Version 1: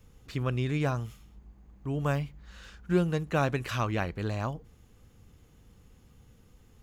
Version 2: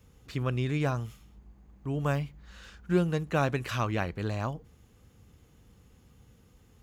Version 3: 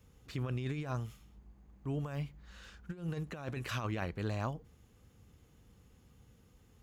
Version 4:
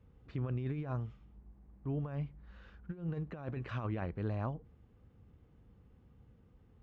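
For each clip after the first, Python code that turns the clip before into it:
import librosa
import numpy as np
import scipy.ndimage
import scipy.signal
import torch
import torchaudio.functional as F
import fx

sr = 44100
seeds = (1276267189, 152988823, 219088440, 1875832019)

y1 = scipy.signal.sosfilt(scipy.signal.butter(2, 43.0, 'highpass', fs=sr, output='sos'), x)
y2 = fx.over_compress(y1, sr, threshold_db=-30.0, ratio=-0.5)
y2 = F.gain(torch.from_numpy(y2), -6.0).numpy()
y3 = fx.spacing_loss(y2, sr, db_at_10k=39)
y3 = F.gain(torch.from_numpy(y3), 1.0).numpy()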